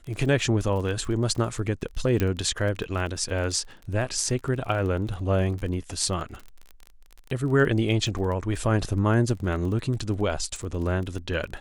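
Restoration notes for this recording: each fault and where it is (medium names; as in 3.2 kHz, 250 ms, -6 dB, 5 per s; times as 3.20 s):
crackle 27 per s -32 dBFS
2.20 s: pop -11 dBFS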